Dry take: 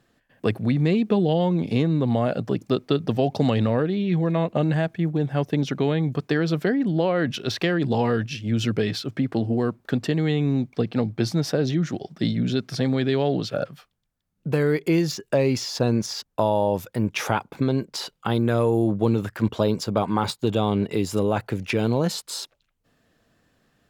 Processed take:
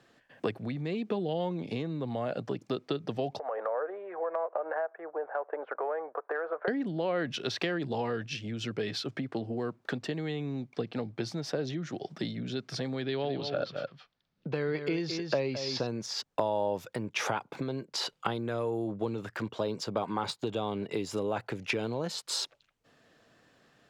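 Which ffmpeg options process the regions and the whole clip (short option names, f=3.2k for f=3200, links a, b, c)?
-filter_complex "[0:a]asettb=1/sr,asplit=3[a][b][c];[a]atrim=end=3.394[d];[b]atrim=start=3.39:end=6.68,asetpts=PTS-STARTPTS,afade=t=in:d=0.004:c=qsin,afade=t=out:st=3.286:d=0.004:c=qsin,asuperpass=centerf=870:order=8:qfactor=0.82,acompressor=threshold=-30dB:ratio=4:attack=3.2:release=140:knee=1:detection=peak[e];[c]atrim=start=6.676[f];[d][e]acrossfade=d=0.004:c1=hsin:c2=qsin[g];[g][f]acrossfade=d=0.004:c1=qsin:c2=hsin,asettb=1/sr,asplit=3[h][i][j];[h]atrim=end=13.024[k];[i]atrim=start=13.02:end=15.87,asetpts=PTS-STARTPTS,afade=t=in:d=0.004:c=qsin,afade=t=out:st=2.846:d=0.004:c=qsin,highshelf=f=6.5k:t=q:w=1.5:g=-14,aecho=1:1:216:0.316,atrim=end_sample=125685[l];[j]atrim=start=15.866[m];[k][l]acrossfade=d=0.004:c1=hsin:c2=qsin[n];[n][m]acrossfade=d=0.004:c1=qsin:c2=hsin,equalizer=f=130:t=o:w=1.1:g=9,acompressor=threshold=-31dB:ratio=3,acrossover=split=290 8000:gain=0.178 1 0.251[o][p][q];[o][p][q]amix=inputs=3:normalize=0,volume=3.5dB"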